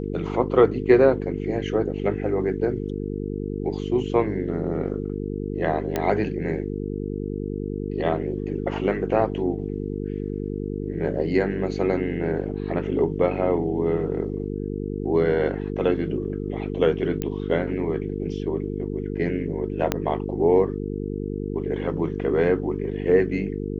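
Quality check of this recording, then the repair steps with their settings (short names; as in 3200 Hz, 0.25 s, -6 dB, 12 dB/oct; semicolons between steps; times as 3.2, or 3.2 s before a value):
buzz 50 Hz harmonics 9 -29 dBFS
5.96 pop -10 dBFS
17.22 pop -14 dBFS
19.92 pop -7 dBFS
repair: de-click; de-hum 50 Hz, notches 9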